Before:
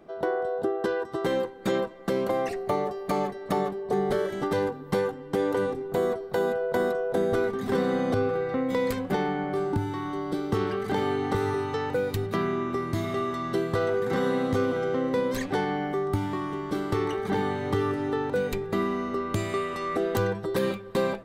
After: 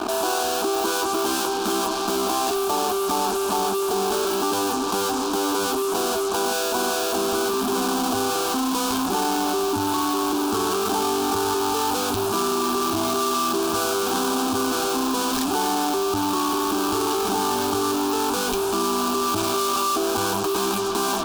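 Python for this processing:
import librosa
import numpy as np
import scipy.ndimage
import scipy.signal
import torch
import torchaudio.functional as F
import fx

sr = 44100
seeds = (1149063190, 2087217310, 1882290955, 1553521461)

p1 = scipy.signal.sosfilt(scipy.signal.butter(2, 2500.0, 'lowpass', fs=sr, output='sos'), x)
p2 = fx.fuzz(p1, sr, gain_db=50.0, gate_db=-53.0)
p3 = p1 + F.gain(torch.from_numpy(p2), -10.5).numpy()
p4 = fx.tilt_eq(p3, sr, slope=2.5)
p5 = fx.fixed_phaser(p4, sr, hz=530.0, stages=6)
y = fx.env_flatten(p5, sr, amount_pct=70)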